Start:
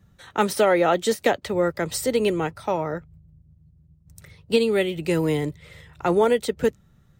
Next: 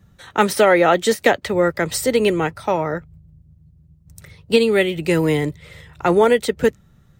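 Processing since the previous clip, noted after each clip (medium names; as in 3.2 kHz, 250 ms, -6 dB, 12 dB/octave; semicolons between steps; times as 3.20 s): dynamic bell 1.9 kHz, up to +4 dB, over -40 dBFS, Q 1.7; trim +4.5 dB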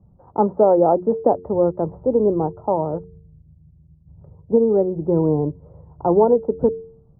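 steep low-pass 990 Hz 48 dB/octave; de-hum 90.18 Hz, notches 5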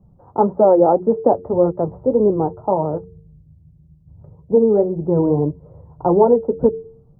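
flange 1.8 Hz, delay 4.6 ms, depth 5.2 ms, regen -51%; trim +6 dB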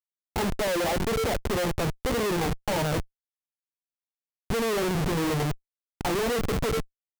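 compression 6:1, threshold -14 dBFS, peak gain reduction 7 dB; Schmitt trigger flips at -29 dBFS; trim -4 dB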